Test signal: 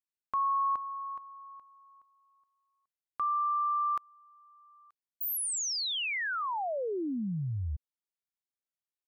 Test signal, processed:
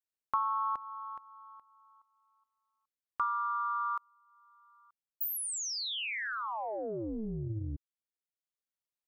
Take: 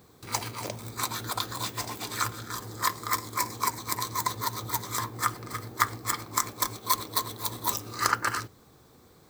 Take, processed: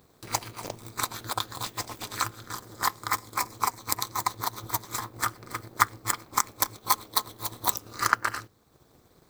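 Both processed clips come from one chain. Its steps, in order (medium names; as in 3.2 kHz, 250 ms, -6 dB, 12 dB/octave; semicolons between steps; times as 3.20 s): AM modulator 220 Hz, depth 75%; transient shaper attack +6 dB, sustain -4 dB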